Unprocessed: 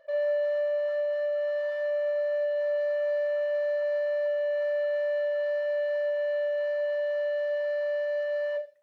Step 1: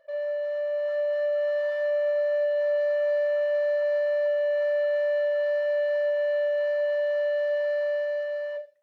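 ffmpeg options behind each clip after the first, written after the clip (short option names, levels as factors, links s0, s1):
-af "dynaudnorm=f=150:g=11:m=2,volume=0.708"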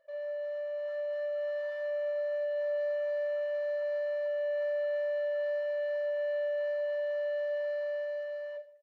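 -filter_complex "[0:a]asplit=2[s0][s1];[s1]adelay=150,lowpass=f=1900:p=1,volume=0.106,asplit=2[s2][s3];[s3]adelay=150,lowpass=f=1900:p=1,volume=0.48,asplit=2[s4][s5];[s5]adelay=150,lowpass=f=1900:p=1,volume=0.48,asplit=2[s6][s7];[s7]adelay=150,lowpass=f=1900:p=1,volume=0.48[s8];[s0][s2][s4][s6][s8]amix=inputs=5:normalize=0,volume=0.398"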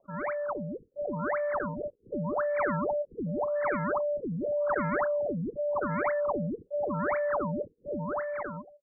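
-af "acrusher=samples=33:mix=1:aa=0.000001:lfo=1:lforange=52.8:lforate=1.9,equalizer=f=1200:t=o:w=1.4:g=11.5,afftfilt=real='re*lt(b*sr/1024,490*pow(2400/490,0.5+0.5*sin(2*PI*0.87*pts/sr)))':imag='im*lt(b*sr/1024,490*pow(2400/490,0.5+0.5*sin(2*PI*0.87*pts/sr)))':win_size=1024:overlap=0.75"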